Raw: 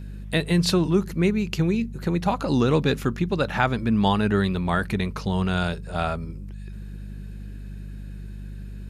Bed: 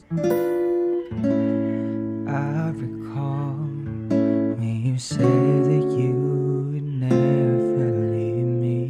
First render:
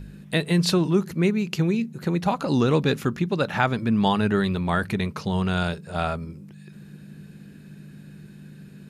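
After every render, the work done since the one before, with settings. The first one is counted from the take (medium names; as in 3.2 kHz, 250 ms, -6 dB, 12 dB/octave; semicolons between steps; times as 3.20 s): de-hum 50 Hz, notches 2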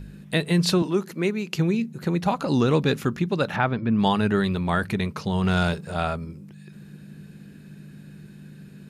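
0.82–1.55 s: high-pass 250 Hz; 3.56–3.99 s: distance through air 260 m; 5.43–5.94 s: waveshaping leveller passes 1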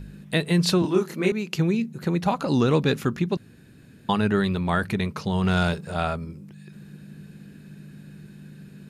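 0.81–1.32 s: doubling 27 ms -2 dB; 3.37–4.09 s: room tone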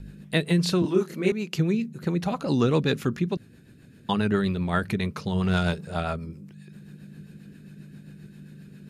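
rotary cabinet horn 7.5 Hz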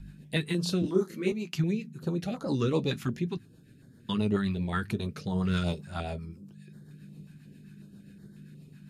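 flange 0.56 Hz, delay 6.3 ms, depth 4.1 ms, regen -49%; step-sequenced notch 5.5 Hz 470–2600 Hz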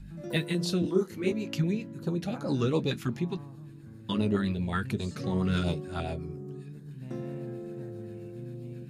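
add bed -19 dB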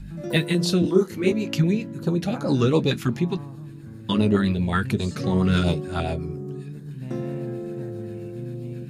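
trim +7.5 dB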